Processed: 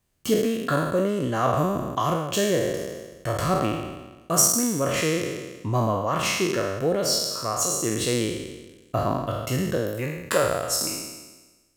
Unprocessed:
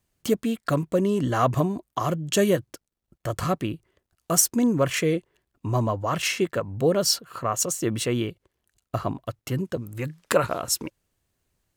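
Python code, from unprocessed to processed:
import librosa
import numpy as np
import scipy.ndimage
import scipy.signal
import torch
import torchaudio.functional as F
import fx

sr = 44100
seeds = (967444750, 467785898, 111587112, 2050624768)

y = fx.spec_trails(x, sr, decay_s=1.23)
y = fx.rider(y, sr, range_db=3, speed_s=0.5)
y = fx.resample_linear(y, sr, factor=2, at=(2.13, 4.34))
y = F.gain(torch.from_numpy(y), -3.0).numpy()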